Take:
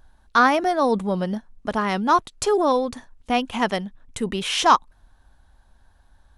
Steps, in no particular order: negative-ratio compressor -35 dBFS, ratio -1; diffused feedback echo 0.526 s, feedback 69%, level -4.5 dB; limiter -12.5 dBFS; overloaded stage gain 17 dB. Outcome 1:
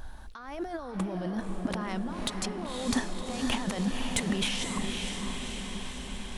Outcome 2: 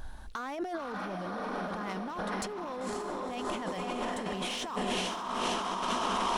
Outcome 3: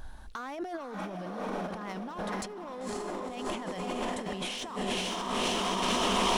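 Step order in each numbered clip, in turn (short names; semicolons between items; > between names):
negative-ratio compressor > limiter > diffused feedback echo > overloaded stage; diffused feedback echo > limiter > overloaded stage > negative-ratio compressor; limiter > overloaded stage > diffused feedback echo > negative-ratio compressor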